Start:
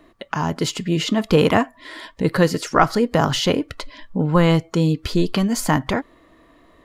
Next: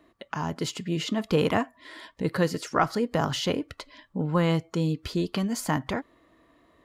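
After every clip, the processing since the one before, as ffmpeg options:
-af "highpass=46,volume=0.398"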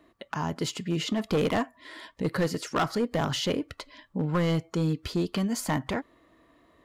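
-af "asoftclip=type=hard:threshold=0.1"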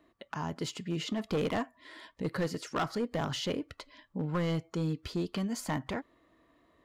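-af "equalizer=f=12000:w=0.94:g=-3.5,volume=0.531"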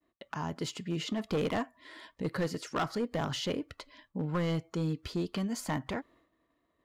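-af "agate=range=0.0224:threshold=0.00126:ratio=3:detection=peak"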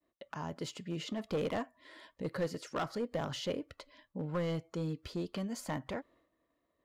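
-af "equalizer=f=550:w=3.7:g=6.5,volume=0.562"

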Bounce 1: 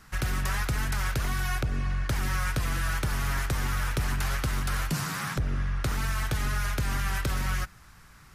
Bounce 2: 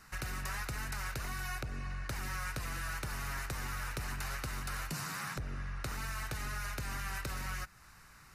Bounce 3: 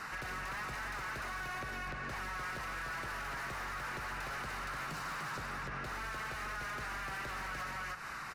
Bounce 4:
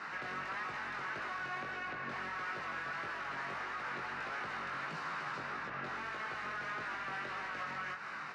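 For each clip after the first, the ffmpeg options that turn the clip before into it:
-af "lowshelf=f=450:g=-5.5,bandreject=f=3300:w=7.4,acompressor=threshold=0.00794:ratio=1.5,volume=0.794"
-filter_complex "[0:a]asplit=2[s0][s1];[s1]aecho=0:1:298:0.631[s2];[s0][s2]amix=inputs=2:normalize=0,asplit=2[s3][s4];[s4]highpass=f=720:p=1,volume=15.8,asoftclip=type=tanh:threshold=0.075[s5];[s3][s5]amix=inputs=2:normalize=0,lowpass=f=1400:p=1,volume=0.501,alimiter=level_in=4.22:limit=0.0631:level=0:latency=1:release=139,volume=0.237,volume=1.33"
-af "flanger=delay=18.5:depth=3.6:speed=1.6,highpass=180,lowpass=3900,volume=1.5"

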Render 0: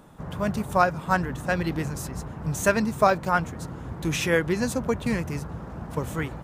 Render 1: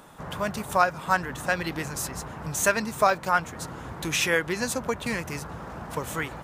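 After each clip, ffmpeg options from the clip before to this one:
-filter_complex "[0:a]asplit=2[s0][s1];[s1]acompressor=threshold=0.0316:ratio=6,volume=1.26[s2];[s0][s2]amix=inputs=2:normalize=0,lowshelf=f=470:g=-12"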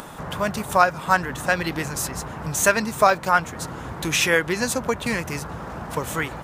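-af "acompressor=mode=upward:threshold=0.0158:ratio=2.5,volume=1.68"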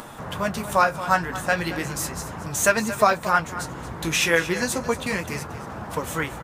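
-af "flanger=delay=8.5:depth=9.8:regen=-39:speed=0.36:shape=sinusoidal,aecho=1:1:228:0.211,volume=1.33"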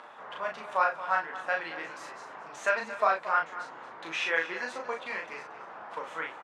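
-filter_complex "[0:a]highpass=610,lowpass=2700,asplit=2[s0][s1];[s1]adelay=37,volume=0.668[s2];[s0][s2]amix=inputs=2:normalize=0,volume=0.447"

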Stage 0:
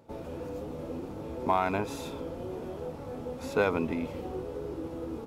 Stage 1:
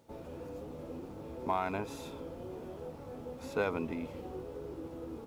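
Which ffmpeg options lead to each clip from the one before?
-af "acrusher=bits=10:mix=0:aa=0.000001,volume=0.501"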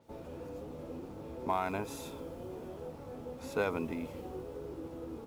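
-af "adynamicequalizer=threshold=0.00126:dfrequency=6300:dqfactor=0.7:tfrequency=6300:tqfactor=0.7:attack=5:release=100:ratio=0.375:range=3.5:mode=boostabove:tftype=highshelf"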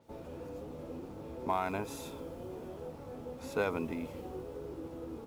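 -af anull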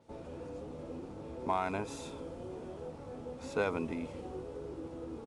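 -af "aresample=22050,aresample=44100"

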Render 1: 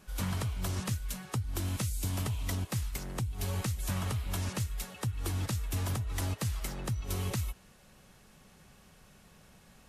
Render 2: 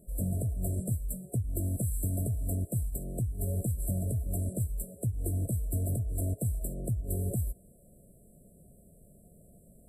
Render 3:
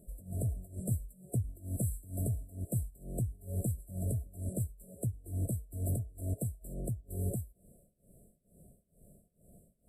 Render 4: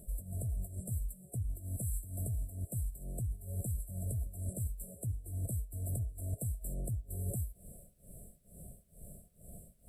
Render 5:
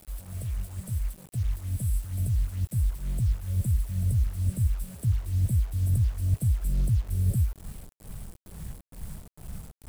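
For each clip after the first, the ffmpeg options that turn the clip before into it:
-af "afftfilt=real='re*(1-between(b*sr/4096,720,7500))':imag='im*(1-between(b*sr/4096,720,7500))':win_size=4096:overlap=0.75,volume=1.33"
-af "tremolo=f=2.2:d=0.93,volume=0.891"
-af "equalizer=f=320:w=0.55:g=-9,areverse,acompressor=threshold=0.00562:ratio=12,areverse,volume=3.76"
-af "asubboost=boost=5:cutoff=240,acrusher=bits=7:mix=0:aa=0.000001"

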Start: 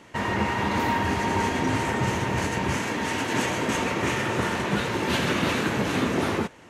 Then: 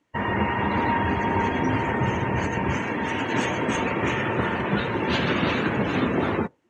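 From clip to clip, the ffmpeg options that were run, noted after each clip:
-af "afftdn=nr=25:nf=-34,volume=1.19"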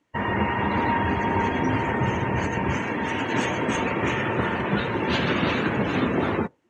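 -af anull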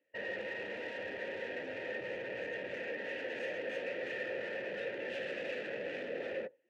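-filter_complex "[0:a]asoftclip=type=hard:threshold=0.0316,asplit=3[s0][s1][s2];[s0]bandpass=f=530:t=q:w=8,volume=1[s3];[s1]bandpass=f=1840:t=q:w=8,volume=0.501[s4];[s2]bandpass=f=2480:t=q:w=8,volume=0.355[s5];[s3][s4][s5]amix=inputs=3:normalize=0,volume=1.5"

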